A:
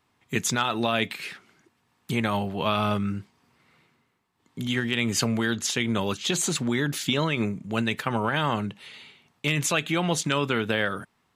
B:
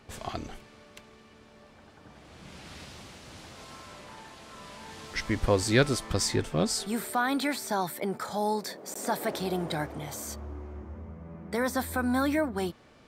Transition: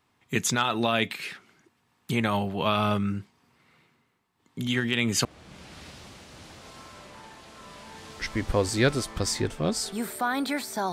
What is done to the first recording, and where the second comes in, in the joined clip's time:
A
5.25 switch to B from 2.19 s

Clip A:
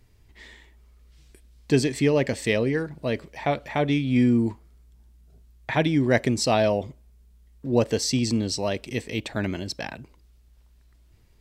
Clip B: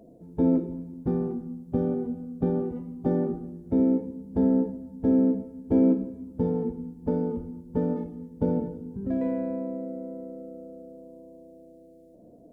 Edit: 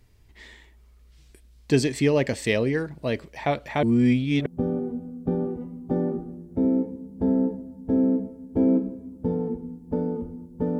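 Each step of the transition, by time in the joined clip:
clip A
3.83–4.46 reverse
4.46 switch to clip B from 1.61 s

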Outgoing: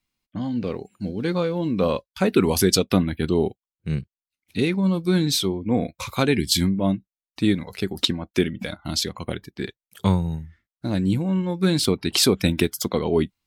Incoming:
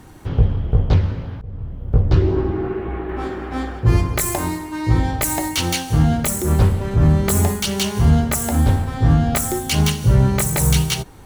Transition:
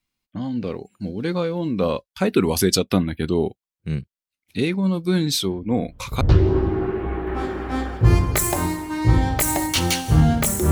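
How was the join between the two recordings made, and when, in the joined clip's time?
outgoing
5.47 add incoming from 1.29 s 0.74 s -15.5 dB
6.21 switch to incoming from 2.03 s

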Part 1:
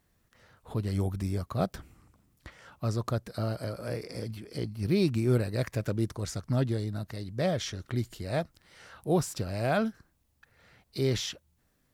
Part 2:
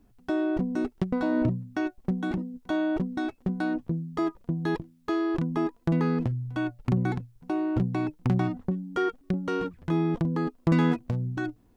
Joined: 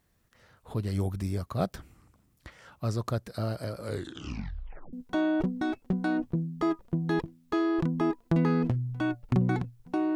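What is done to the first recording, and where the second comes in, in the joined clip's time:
part 1
3.78 tape stop 1.15 s
4.93 switch to part 2 from 2.49 s

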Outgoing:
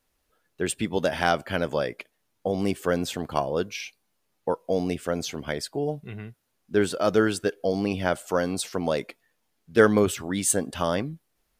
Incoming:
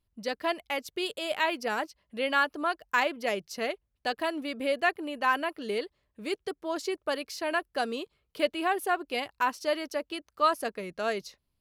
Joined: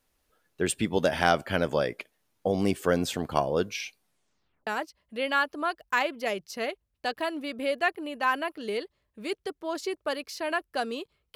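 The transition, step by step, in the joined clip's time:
outgoing
4 tape stop 0.67 s
4.67 switch to incoming from 1.68 s

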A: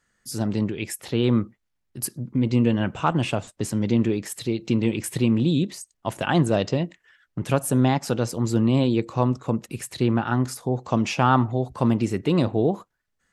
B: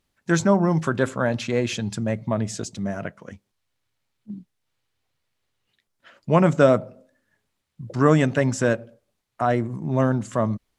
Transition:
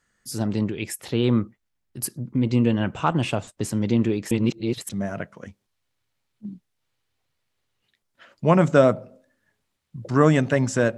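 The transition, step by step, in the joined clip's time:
A
4.31–4.89 reverse
4.89 switch to B from 2.74 s

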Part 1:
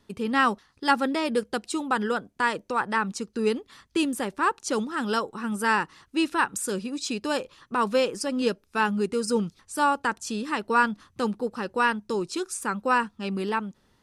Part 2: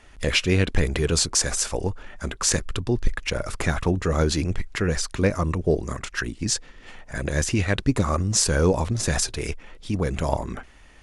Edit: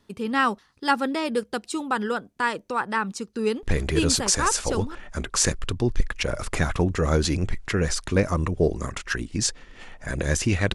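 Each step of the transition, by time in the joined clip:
part 1
4.29 switch to part 2 from 1.36 s, crossfade 1.32 s logarithmic

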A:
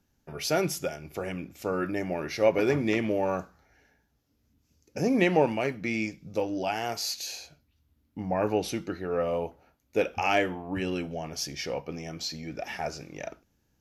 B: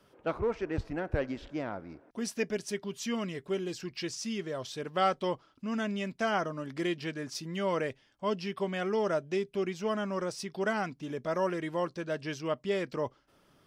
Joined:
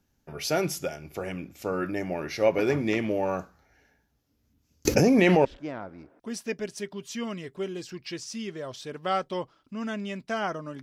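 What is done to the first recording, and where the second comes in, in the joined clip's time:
A
4.85–5.45 fast leveller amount 100%
5.45 switch to B from 1.36 s

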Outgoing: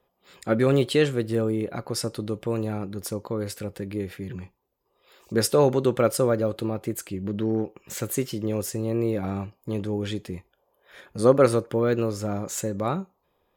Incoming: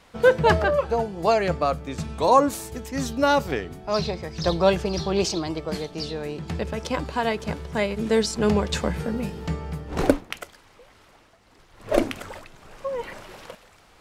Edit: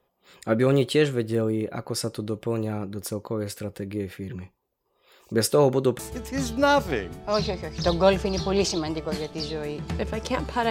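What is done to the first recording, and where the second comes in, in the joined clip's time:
outgoing
5.99 switch to incoming from 2.59 s

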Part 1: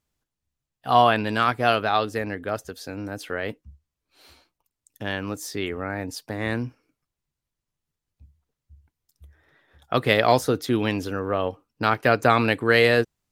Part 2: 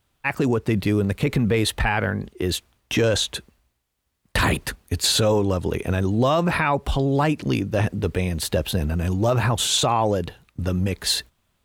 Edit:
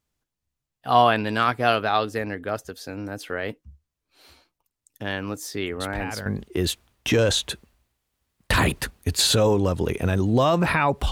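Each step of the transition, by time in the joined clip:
part 1
5.8 add part 2 from 1.65 s 0.46 s -11 dB
6.26 switch to part 2 from 2.11 s

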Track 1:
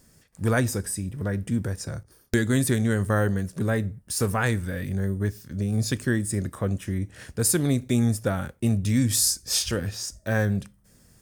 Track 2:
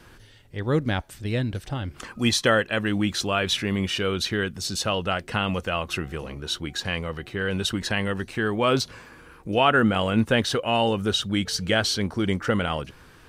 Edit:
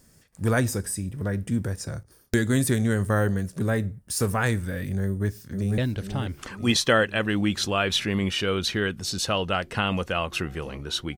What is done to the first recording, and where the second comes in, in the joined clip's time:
track 1
5.03–5.78 echo throw 0.49 s, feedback 55%, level -8 dB
5.78 switch to track 2 from 1.35 s

